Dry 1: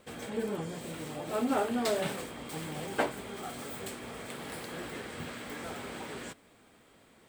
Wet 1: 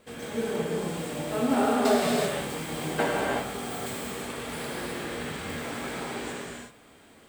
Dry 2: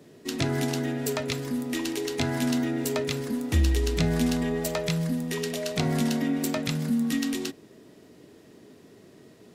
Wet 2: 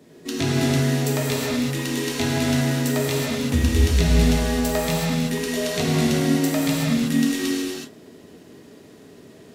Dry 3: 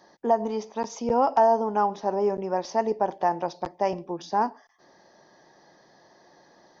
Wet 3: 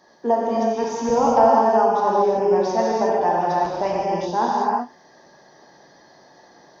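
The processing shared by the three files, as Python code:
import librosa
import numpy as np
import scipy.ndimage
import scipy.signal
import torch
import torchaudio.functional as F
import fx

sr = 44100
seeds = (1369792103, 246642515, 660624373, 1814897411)

y = fx.rev_gated(x, sr, seeds[0], gate_ms=400, shape='flat', drr_db=-5.5)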